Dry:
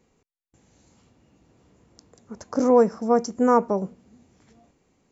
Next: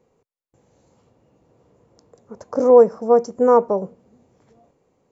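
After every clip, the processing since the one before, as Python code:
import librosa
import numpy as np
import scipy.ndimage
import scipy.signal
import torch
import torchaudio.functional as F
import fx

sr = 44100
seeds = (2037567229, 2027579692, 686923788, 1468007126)

y = fx.graphic_eq(x, sr, hz=(125, 500, 1000), db=(7, 12, 6))
y = y * 10.0 ** (-6.0 / 20.0)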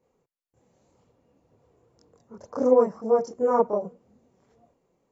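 y = fx.chorus_voices(x, sr, voices=2, hz=0.97, base_ms=26, depth_ms=3.0, mix_pct=60)
y = y * 10.0 ** (-3.0 / 20.0)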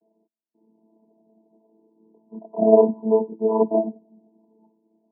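y = fx.chord_vocoder(x, sr, chord='bare fifth', root=57)
y = scipy.signal.sosfilt(scipy.signal.cheby1(6, 3, 970.0, 'lowpass', fs=sr, output='sos'), y)
y = y * 10.0 ** (6.0 / 20.0)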